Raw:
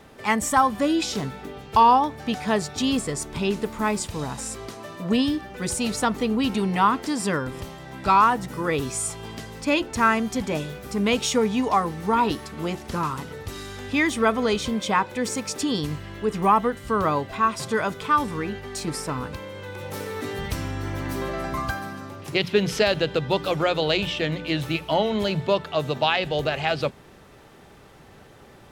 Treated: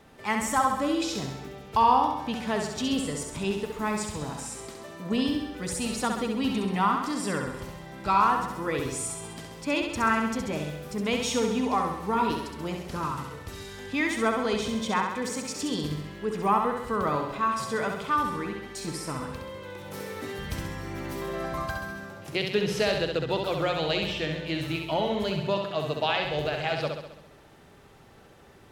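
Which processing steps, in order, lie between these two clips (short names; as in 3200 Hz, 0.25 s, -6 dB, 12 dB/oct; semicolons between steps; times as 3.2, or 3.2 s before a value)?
flutter echo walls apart 11.4 m, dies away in 0.82 s; gain -6 dB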